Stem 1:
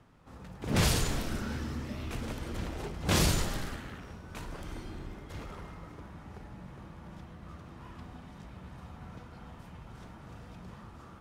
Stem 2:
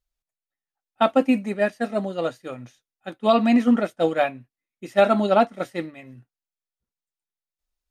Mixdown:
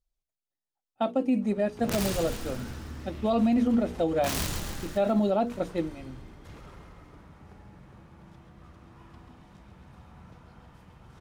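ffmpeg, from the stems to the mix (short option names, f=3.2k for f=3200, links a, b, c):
-filter_complex "[0:a]aeval=exprs='(mod(8.41*val(0)+1,2)-1)/8.41':c=same,adelay=1150,volume=-5dB,asplit=2[a][b];[b]volume=-7.5dB[c];[1:a]lowpass=f=3.7k:p=1,equalizer=f=1.7k:t=o:w=1.8:g=-12,bandreject=f=60:t=h:w=6,bandreject=f=120:t=h:w=6,bandreject=f=180:t=h:w=6,bandreject=f=240:t=h:w=6,bandreject=f=300:t=h:w=6,bandreject=f=360:t=h:w=6,bandreject=f=420:t=h:w=6,bandreject=f=480:t=h:w=6,volume=2dB[d];[c]aecho=0:1:135|270|405|540|675|810|945|1080|1215|1350:1|0.6|0.36|0.216|0.13|0.0778|0.0467|0.028|0.0168|0.0101[e];[a][d][e]amix=inputs=3:normalize=0,alimiter=limit=-17dB:level=0:latency=1:release=69"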